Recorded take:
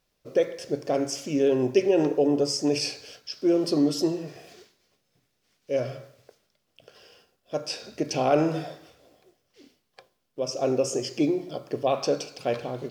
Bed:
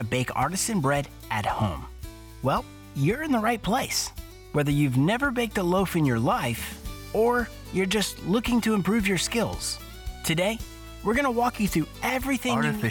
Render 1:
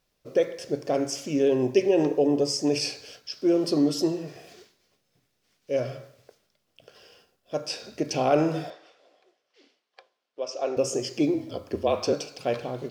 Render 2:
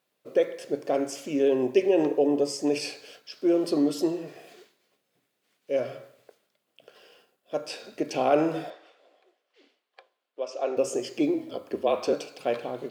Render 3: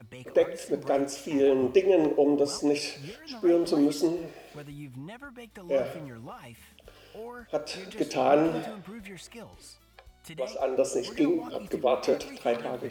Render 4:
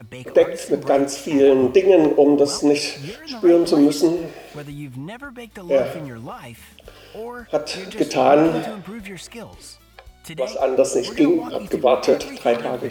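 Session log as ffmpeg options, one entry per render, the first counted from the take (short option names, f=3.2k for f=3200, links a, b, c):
-filter_complex "[0:a]asettb=1/sr,asplit=3[a][b][c];[a]atrim=end=1.454[d];[b]atrim=start=1.45:end=2.7,asetpts=PTS-STARTPTS,afade=t=in:d=0.004:c=qsin,afade=t=out:st=1.246:d=0.004:c=qsin,bandreject=f=1.4k:w=7.9[e];[c]atrim=start=2.696[f];[d][e]acrossfade=d=0.004:c1=hsin:c2=qsin[g];[g][f]acrossfade=d=0.004:c1=qsin:c2=hsin,asettb=1/sr,asplit=3[h][i][j];[h]atrim=end=8.704[k];[i]atrim=start=8.7:end=10.77,asetpts=PTS-STARTPTS,afade=t=in:d=0.004:c=qsin,afade=t=out:st=2.066:d=0.004:c=qsin,highpass=490,lowpass=4.8k[l];[j]atrim=start=10.766[m];[k][l]acrossfade=d=0.004:c1=hsin:c2=qsin[n];[n][m]acrossfade=d=0.004:c1=qsin:c2=hsin,asettb=1/sr,asplit=3[o][p][q];[o]atrim=end=11.344[r];[p]atrim=start=11.34:end=12.13,asetpts=PTS-STARTPTS,afade=t=in:d=0.004:c=qsin,afade=t=out:st=0.786:d=0.004:c=qsin,afreqshift=-39[s];[q]atrim=start=12.126[t];[r][s]acrossfade=d=0.004:c1=hsin:c2=qsin[u];[u][t]acrossfade=d=0.004:c1=qsin:c2=hsin"
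-af "highpass=230,equalizer=f=5.5k:w=2.3:g=-8.5"
-filter_complex "[1:a]volume=-19.5dB[a];[0:a][a]amix=inputs=2:normalize=0"
-af "volume=9dB,alimiter=limit=-3dB:level=0:latency=1"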